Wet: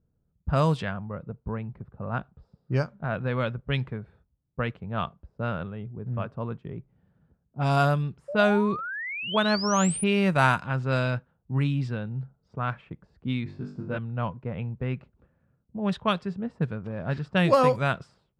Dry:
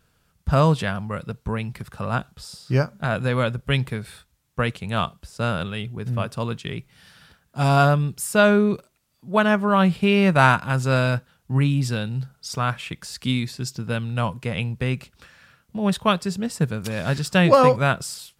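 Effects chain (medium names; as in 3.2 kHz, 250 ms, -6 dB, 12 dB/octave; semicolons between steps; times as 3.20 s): 13.44–13.98 s: flutter echo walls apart 3.5 m, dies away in 0.52 s; level-controlled noise filter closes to 390 Hz, open at -12.5 dBFS; 8.28–10.04 s: painted sound rise 550–10000 Hz -28 dBFS; trim -5.5 dB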